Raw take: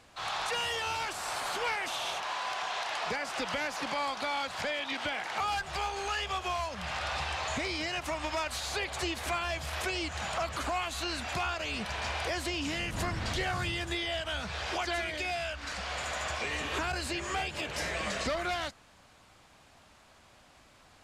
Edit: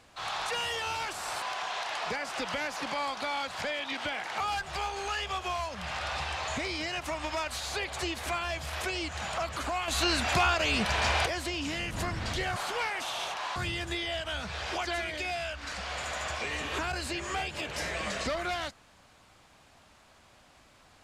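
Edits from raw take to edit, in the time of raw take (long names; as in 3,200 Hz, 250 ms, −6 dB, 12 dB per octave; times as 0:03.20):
0:01.42–0:02.42: move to 0:13.56
0:10.88–0:12.26: clip gain +7.5 dB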